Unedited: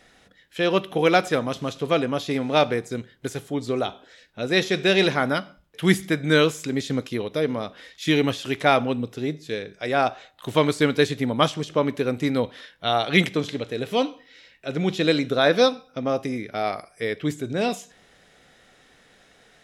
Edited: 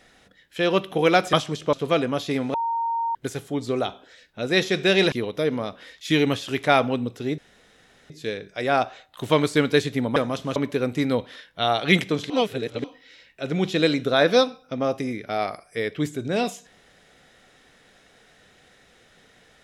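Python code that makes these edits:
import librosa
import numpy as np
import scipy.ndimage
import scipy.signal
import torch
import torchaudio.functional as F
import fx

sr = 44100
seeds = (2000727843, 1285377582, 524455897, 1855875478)

y = fx.edit(x, sr, fx.swap(start_s=1.33, length_s=0.4, other_s=11.41, other_length_s=0.4),
    fx.bleep(start_s=2.54, length_s=0.61, hz=923.0, db=-22.0),
    fx.cut(start_s=5.12, length_s=1.97),
    fx.insert_room_tone(at_s=9.35, length_s=0.72),
    fx.reverse_span(start_s=13.55, length_s=0.54), tone=tone)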